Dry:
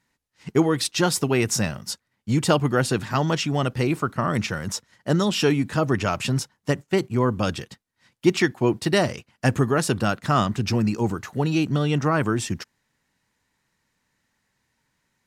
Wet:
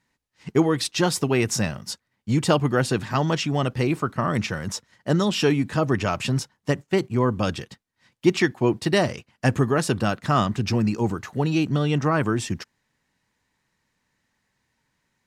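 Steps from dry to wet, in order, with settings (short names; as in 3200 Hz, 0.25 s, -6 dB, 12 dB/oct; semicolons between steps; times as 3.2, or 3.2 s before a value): high shelf 9000 Hz -6 dB; notch 1400 Hz, Q 25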